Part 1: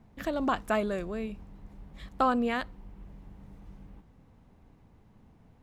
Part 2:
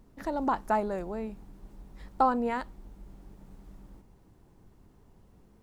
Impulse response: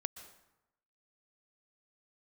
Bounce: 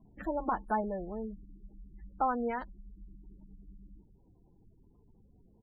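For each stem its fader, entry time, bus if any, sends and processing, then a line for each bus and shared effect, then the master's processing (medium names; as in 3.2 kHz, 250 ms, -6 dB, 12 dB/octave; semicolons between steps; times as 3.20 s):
-3.5 dB, 0.00 s, no send, peaking EQ 5.9 kHz -14 dB 0.24 oct; auto duck -11 dB, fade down 0.90 s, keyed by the second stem
-4.5 dB, 8 ms, polarity flipped, no send, none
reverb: none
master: spectral gate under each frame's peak -20 dB strong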